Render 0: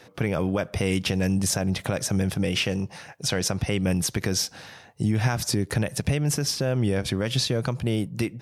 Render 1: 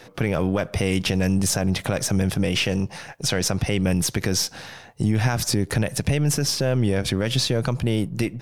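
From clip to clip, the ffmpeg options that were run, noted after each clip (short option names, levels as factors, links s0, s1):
-filter_complex "[0:a]aeval=exprs='if(lt(val(0),0),0.708*val(0),val(0))':c=same,asplit=2[s0][s1];[s1]alimiter=limit=0.0841:level=0:latency=1:release=21,volume=1[s2];[s0][s2]amix=inputs=2:normalize=0"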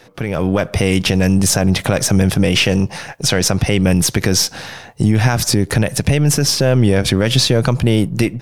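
-af "dynaudnorm=f=270:g=3:m=3.76"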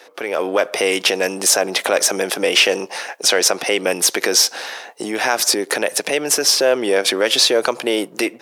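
-af "highpass=f=370:w=0.5412,highpass=f=370:w=1.3066,volume=1.26"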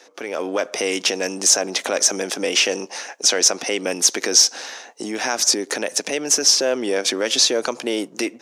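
-af "equalizer=f=250:t=o:w=0.67:g=7,equalizer=f=6300:t=o:w=0.67:g=11,equalizer=f=16000:t=o:w=0.67:g=-11,volume=0.501"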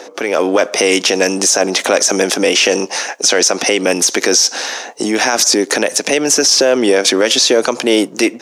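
-filter_complex "[0:a]acrossover=split=890|2800[s0][s1][s2];[s0]acompressor=mode=upward:threshold=0.0112:ratio=2.5[s3];[s3][s1][s2]amix=inputs=3:normalize=0,alimiter=level_in=4.22:limit=0.891:release=50:level=0:latency=1,volume=0.891"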